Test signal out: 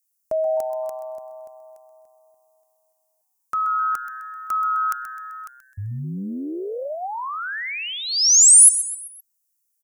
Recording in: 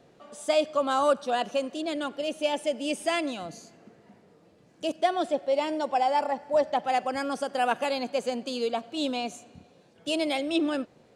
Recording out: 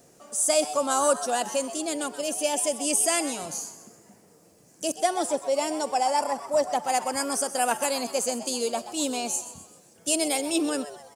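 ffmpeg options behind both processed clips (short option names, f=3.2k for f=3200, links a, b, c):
-filter_complex "[0:a]asplit=5[a][b][c][d][e];[b]adelay=129,afreqshift=130,volume=-13.5dB[f];[c]adelay=258,afreqshift=260,volume=-20.6dB[g];[d]adelay=387,afreqshift=390,volume=-27.8dB[h];[e]adelay=516,afreqshift=520,volume=-34.9dB[i];[a][f][g][h][i]amix=inputs=5:normalize=0,aexciter=amount=8.3:drive=5.4:freq=5.4k"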